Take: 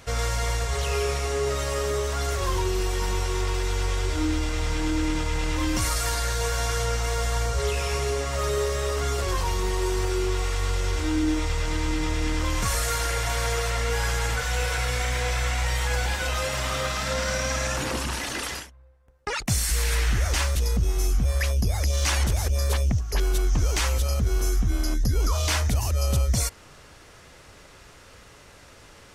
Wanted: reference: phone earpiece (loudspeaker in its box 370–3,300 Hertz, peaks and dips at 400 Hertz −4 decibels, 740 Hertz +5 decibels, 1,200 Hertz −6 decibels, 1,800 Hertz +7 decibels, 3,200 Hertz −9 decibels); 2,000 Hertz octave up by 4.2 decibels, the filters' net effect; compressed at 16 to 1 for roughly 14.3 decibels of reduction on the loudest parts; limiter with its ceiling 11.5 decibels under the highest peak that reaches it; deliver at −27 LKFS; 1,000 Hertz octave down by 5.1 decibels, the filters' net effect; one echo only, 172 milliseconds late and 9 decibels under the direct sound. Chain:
parametric band 1,000 Hz −9 dB
parametric band 2,000 Hz +4.5 dB
downward compressor 16 to 1, threshold −33 dBFS
brickwall limiter −30 dBFS
loudspeaker in its box 370–3,300 Hz, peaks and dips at 400 Hz −4 dB, 740 Hz +5 dB, 1,200 Hz −6 dB, 1,800 Hz +7 dB, 3,200 Hz −9 dB
single-tap delay 172 ms −9 dB
level +16 dB

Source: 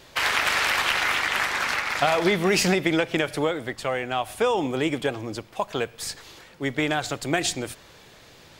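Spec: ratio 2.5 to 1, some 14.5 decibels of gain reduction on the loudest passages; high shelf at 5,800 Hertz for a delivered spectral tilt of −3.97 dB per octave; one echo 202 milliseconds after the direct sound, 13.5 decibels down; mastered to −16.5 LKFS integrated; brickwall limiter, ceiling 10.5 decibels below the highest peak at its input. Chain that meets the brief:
high-shelf EQ 5,800 Hz +5.5 dB
downward compressor 2.5 to 1, threshold −40 dBFS
brickwall limiter −30.5 dBFS
single-tap delay 202 ms −13.5 dB
level +24 dB

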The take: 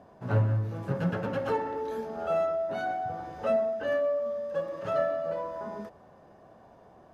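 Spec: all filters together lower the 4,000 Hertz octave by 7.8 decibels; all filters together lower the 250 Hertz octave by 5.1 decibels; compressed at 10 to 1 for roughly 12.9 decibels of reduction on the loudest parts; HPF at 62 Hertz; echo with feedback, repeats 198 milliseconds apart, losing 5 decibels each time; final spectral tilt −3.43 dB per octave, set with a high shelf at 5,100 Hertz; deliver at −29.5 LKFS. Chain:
high-pass filter 62 Hz
parametric band 250 Hz −8 dB
parametric band 4,000 Hz −9 dB
high-shelf EQ 5,100 Hz −6.5 dB
downward compressor 10 to 1, threshold −35 dBFS
repeating echo 198 ms, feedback 56%, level −5 dB
level +9 dB

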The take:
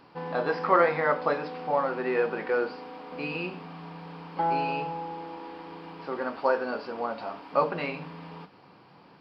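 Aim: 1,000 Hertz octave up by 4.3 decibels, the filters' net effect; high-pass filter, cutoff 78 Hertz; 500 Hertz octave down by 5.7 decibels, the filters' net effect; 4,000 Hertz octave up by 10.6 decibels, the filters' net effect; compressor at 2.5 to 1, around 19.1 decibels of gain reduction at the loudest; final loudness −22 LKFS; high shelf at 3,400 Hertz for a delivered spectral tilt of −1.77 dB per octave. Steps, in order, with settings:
high-pass filter 78 Hz
parametric band 500 Hz −8.5 dB
parametric band 1,000 Hz +6.5 dB
high-shelf EQ 3,400 Hz +8 dB
parametric band 4,000 Hz +8 dB
downward compressor 2.5 to 1, threshold −44 dBFS
level +19.5 dB

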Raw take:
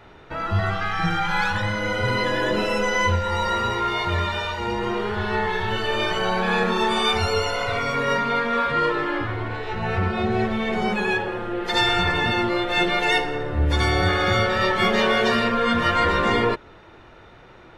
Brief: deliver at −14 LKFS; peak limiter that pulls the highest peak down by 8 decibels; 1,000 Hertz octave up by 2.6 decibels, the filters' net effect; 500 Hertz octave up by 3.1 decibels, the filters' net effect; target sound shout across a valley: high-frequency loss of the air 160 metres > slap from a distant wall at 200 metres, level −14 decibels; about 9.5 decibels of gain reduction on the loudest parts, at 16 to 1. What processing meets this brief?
parametric band 500 Hz +3.5 dB
parametric band 1,000 Hz +3.5 dB
downward compressor 16 to 1, threshold −23 dBFS
brickwall limiter −22 dBFS
high-frequency loss of the air 160 metres
slap from a distant wall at 200 metres, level −14 dB
level +17 dB

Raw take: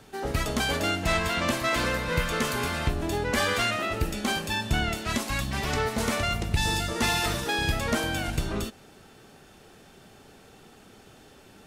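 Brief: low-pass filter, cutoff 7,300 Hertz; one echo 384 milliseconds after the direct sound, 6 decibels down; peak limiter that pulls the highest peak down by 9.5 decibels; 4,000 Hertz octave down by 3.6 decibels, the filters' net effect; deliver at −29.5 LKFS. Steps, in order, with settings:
low-pass filter 7,300 Hz
parametric band 4,000 Hz −4.5 dB
brickwall limiter −23 dBFS
single-tap delay 384 ms −6 dB
level +1.5 dB

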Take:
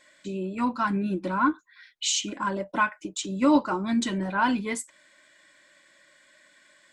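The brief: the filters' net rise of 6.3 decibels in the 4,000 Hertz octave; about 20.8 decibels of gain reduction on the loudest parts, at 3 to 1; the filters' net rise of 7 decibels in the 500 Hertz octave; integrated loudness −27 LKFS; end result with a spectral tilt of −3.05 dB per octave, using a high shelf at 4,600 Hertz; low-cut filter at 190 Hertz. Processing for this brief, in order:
high-pass filter 190 Hz
parametric band 500 Hz +9 dB
parametric band 4,000 Hz +6 dB
high-shelf EQ 4,600 Hz +4 dB
downward compressor 3 to 1, threshold −42 dBFS
level +13 dB

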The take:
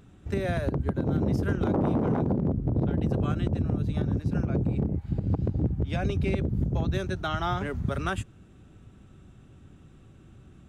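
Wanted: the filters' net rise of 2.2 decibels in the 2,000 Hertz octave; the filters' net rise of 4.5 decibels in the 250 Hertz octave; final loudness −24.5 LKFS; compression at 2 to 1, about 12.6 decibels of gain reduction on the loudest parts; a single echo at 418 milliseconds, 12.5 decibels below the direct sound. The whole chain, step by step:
parametric band 250 Hz +6 dB
parametric band 2,000 Hz +3 dB
downward compressor 2 to 1, threshold −43 dBFS
single-tap delay 418 ms −12.5 dB
level +12.5 dB

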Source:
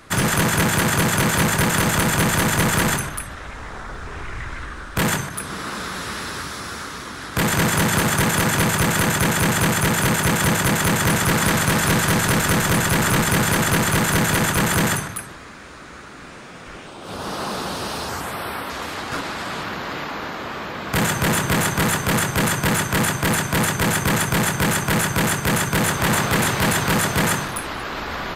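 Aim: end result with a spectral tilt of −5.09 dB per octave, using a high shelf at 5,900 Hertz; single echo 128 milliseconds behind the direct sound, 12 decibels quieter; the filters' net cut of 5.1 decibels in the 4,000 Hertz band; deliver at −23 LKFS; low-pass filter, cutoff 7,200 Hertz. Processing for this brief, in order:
low-pass filter 7,200 Hz
parametric band 4,000 Hz −4 dB
high-shelf EQ 5,900 Hz −7 dB
single-tap delay 128 ms −12 dB
level −2 dB

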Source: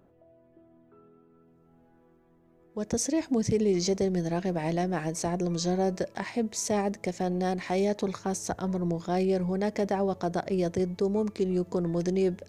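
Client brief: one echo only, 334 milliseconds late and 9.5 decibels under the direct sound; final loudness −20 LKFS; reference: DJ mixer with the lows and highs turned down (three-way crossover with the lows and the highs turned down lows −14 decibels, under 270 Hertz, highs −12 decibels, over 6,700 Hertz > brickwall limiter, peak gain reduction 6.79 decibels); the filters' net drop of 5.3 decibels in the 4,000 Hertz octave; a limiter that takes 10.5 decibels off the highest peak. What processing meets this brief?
parametric band 4,000 Hz −5.5 dB
brickwall limiter −26.5 dBFS
three-way crossover with the lows and the highs turned down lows −14 dB, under 270 Hz, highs −12 dB, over 6,700 Hz
single-tap delay 334 ms −9.5 dB
level +20 dB
brickwall limiter −10.5 dBFS

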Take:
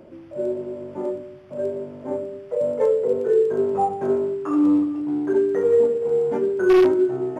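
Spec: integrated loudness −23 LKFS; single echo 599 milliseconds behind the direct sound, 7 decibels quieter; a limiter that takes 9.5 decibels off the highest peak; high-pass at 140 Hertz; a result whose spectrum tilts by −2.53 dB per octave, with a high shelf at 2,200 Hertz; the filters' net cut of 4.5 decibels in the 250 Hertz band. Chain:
high-pass filter 140 Hz
parametric band 250 Hz −7 dB
high-shelf EQ 2,200 Hz +6 dB
brickwall limiter −19 dBFS
single-tap delay 599 ms −7 dB
level +3 dB

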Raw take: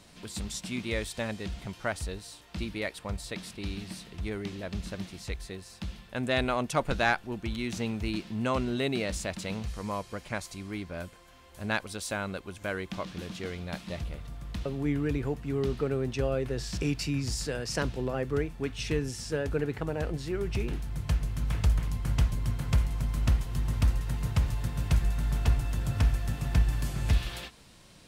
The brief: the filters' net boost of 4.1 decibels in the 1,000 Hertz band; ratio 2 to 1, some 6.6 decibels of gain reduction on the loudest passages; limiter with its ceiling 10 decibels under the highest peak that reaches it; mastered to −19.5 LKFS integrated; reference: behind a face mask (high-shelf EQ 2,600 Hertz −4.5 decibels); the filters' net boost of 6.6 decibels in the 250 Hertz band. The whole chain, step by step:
parametric band 250 Hz +8 dB
parametric band 1,000 Hz +5.5 dB
downward compressor 2 to 1, threshold −30 dBFS
brickwall limiter −24.5 dBFS
high-shelf EQ 2,600 Hz −4.5 dB
level +16 dB

